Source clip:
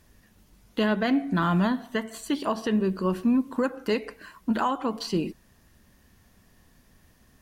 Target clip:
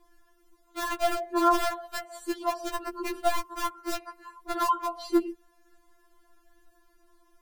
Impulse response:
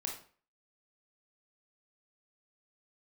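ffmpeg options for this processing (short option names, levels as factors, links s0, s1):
-af "aeval=exprs='(mod(6.68*val(0)+1,2)-1)/6.68':c=same,highshelf=f=1700:t=q:w=1.5:g=-6.5,afftfilt=real='re*4*eq(mod(b,16),0)':imag='im*4*eq(mod(b,16),0)':win_size=2048:overlap=0.75,volume=1.19"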